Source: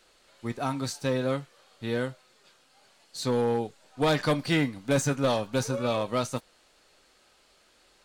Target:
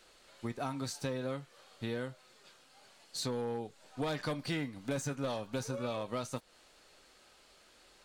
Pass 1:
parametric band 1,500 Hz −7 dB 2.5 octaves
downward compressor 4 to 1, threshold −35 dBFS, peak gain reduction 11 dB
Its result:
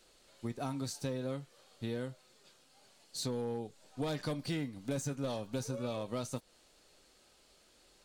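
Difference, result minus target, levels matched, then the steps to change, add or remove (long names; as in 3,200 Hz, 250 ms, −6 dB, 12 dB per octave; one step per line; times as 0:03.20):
2,000 Hz band −4.5 dB
remove: parametric band 1,500 Hz −7 dB 2.5 octaves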